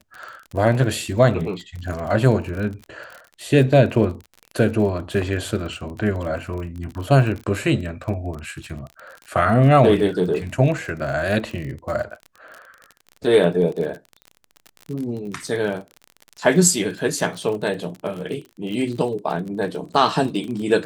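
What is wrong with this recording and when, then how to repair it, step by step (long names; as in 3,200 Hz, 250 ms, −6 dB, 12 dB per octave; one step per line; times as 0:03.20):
surface crackle 40 per second −29 dBFS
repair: click removal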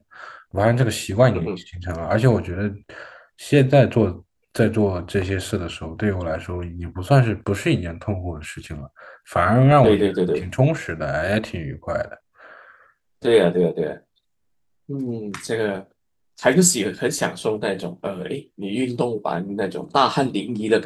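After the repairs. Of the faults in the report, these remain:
none of them is left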